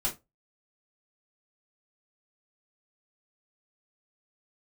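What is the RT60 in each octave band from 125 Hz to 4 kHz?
0.30, 0.25, 0.20, 0.20, 0.20, 0.15 s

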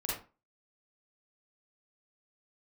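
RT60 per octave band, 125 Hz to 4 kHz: 0.30, 0.35, 0.30, 0.35, 0.30, 0.20 s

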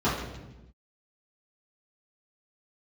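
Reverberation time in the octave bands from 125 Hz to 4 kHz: 1.3, 1.4, 1.1, 0.90, 0.90, 0.85 s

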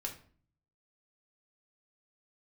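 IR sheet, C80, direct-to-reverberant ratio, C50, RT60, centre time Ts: 15.5 dB, 0.0 dB, 10.0 dB, 0.45 s, 15 ms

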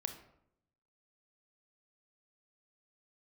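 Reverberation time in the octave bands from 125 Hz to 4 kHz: 1.1, 0.95, 0.80, 0.70, 0.55, 0.45 s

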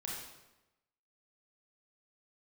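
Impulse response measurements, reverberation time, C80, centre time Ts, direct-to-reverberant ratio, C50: 1.0 s, 3.0 dB, 66 ms, -4.0 dB, 0.0 dB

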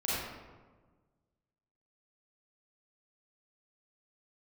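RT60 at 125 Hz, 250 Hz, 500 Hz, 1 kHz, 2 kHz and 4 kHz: 1.9, 1.7, 1.5, 1.3, 1.0, 0.75 s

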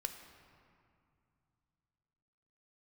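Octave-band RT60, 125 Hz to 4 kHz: 3.6, 3.2, 2.4, 2.6, 2.0, 1.4 s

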